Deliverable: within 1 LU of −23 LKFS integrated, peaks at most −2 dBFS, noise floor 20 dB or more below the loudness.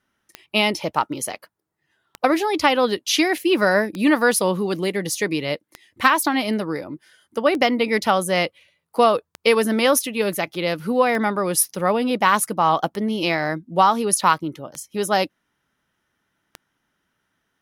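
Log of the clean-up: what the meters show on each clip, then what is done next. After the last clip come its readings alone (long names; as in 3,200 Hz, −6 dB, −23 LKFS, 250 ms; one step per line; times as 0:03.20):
number of clicks 10; integrated loudness −20.5 LKFS; sample peak −2.0 dBFS; target loudness −23.0 LKFS
→ click removal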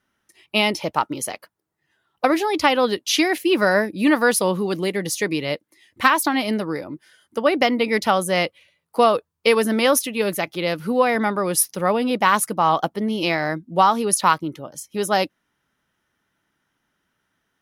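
number of clicks 0; integrated loudness −20.5 LKFS; sample peak −2.0 dBFS; target loudness −23.0 LKFS
→ level −2.5 dB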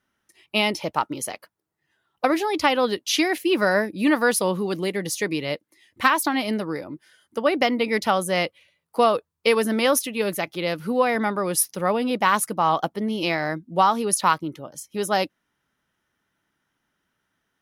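integrated loudness −23.0 LKFS; sample peak −4.5 dBFS; background noise floor −78 dBFS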